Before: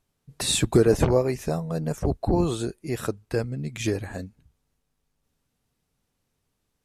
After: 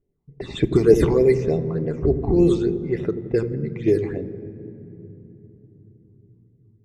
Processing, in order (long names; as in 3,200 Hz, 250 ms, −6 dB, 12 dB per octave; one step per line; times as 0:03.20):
hollow resonant body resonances 400/2,000/3,600 Hz, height 12 dB, ringing for 20 ms
all-pass phaser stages 8, 3.4 Hz, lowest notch 450–1,400 Hz
low-pass that shuts in the quiet parts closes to 730 Hz, open at −13.5 dBFS
delay with a low-pass on its return 86 ms, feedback 68%, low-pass 450 Hz, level −9 dB
on a send at −11.5 dB: convolution reverb RT60 3.6 s, pre-delay 3 ms